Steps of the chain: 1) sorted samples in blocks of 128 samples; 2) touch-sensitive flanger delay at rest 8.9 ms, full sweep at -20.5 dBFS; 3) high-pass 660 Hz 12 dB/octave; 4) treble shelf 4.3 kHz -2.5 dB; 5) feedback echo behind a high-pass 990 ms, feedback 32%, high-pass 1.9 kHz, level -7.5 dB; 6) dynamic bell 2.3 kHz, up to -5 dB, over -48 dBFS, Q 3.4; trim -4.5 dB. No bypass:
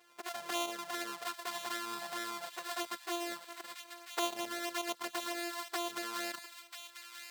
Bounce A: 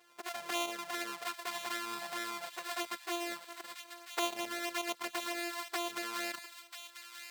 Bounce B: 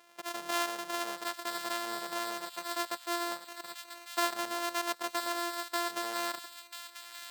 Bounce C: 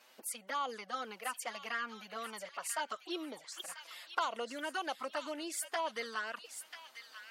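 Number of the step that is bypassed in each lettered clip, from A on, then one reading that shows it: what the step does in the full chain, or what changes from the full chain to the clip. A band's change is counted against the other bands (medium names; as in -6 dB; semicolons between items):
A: 6, 2 kHz band +2.0 dB; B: 2, 1 kHz band +2.0 dB; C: 1, 4 kHz band -3.5 dB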